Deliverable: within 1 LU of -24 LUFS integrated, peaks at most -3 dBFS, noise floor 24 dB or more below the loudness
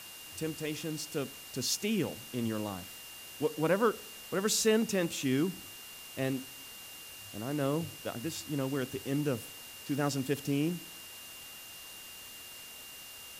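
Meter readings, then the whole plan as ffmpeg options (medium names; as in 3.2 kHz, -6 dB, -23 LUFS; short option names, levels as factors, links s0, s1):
steady tone 2.8 kHz; tone level -50 dBFS; noise floor -48 dBFS; noise floor target -58 dBFS; loudness -33.5 LUFS; peak level -15.5 dBFS; loudness target -24.0 LUFS
-> -af "bandreject=f=2800:w=30"
-af "afftdn=nr=10:nf=-48"
-af "volume=2.99"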